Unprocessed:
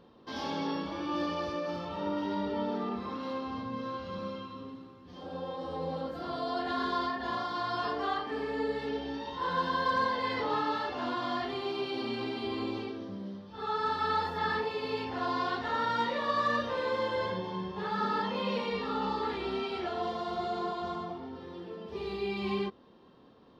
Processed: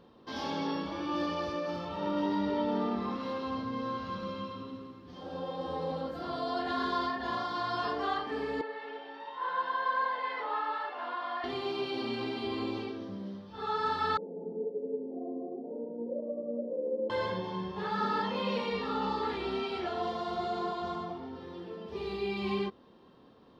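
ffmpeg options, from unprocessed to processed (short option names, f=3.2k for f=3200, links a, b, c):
-filter_complex "[0:a]asettb=1/sr,asplit=3[a][b][c];[a]atrim=end=1.864[d];[b]atrim=start=1.86:end=5.92,asetpts=PTS-STARTPTS,afade=t=in:d=0.004:c=qsin,afade=t=out:st=4.056:d=0.004:c=qsin,aecho=1:1:166:0.562,atrim=end_sample=179046[e];[c]atrim=start=5.916[f];[d][e]acrossfade=d=0.004:c1=hsin:c2=qsin[g];[g][f]acrossfade=d=0.004:c1=qsin:c2=hsin,asettb=1/sr,asplit=3[h][i][j];[h]atrim=end=8.614[k];[i]atrim=start=8.61:end=11.44,asetpts=PTS-STARTPTS,afade=t=in:d=0.004:c=qsin,afade=t=out:st=2.826:d=0.004:c=qsin,highpass=700,lowpass=2.3k[l];[j]atrim=start=11.436[m];[k][l]acrossfade=d=0.004:c1=hsin:c2=qsin[n];[n][m]acrossfade=d=0.004:c1=qsin:c2=hsin,asettb=1/sr,asplit=3[o][p][q];[o]atrim=end=14.174[r];[p]atrim=start=14.17:end=17.1,asetpts=PTS-STARTPTS,afade=t=in:d=0.004:c=qsin,afade=t=out:st=2.926:d=0.004:c=qsin,asuperpass=centerf=340:order=12:qfactor=0.76[s];[q]atrim=start=17.096[t];[r][s]acrossfade=d=0.004:c1=hsin:c2=qsin[u];[u][t]acrossfade=d=0.004:c1=qsin:c2=hsin"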